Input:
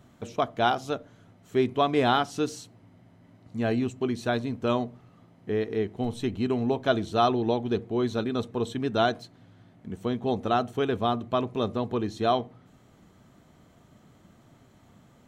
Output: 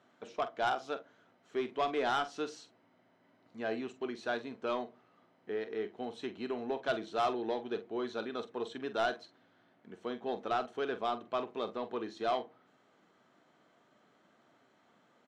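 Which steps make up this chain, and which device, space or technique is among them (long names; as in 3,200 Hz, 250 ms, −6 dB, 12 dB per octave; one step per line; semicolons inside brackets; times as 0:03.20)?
intercom (band-pass filter 360–4,900 Hz; parametric band 1,500 Hz +4 dB 0.4 octaves; soft clipping −17.5 dBFS, distortion −14 dB; double-tracking delay 45 ms −12 dB)
level −6 dB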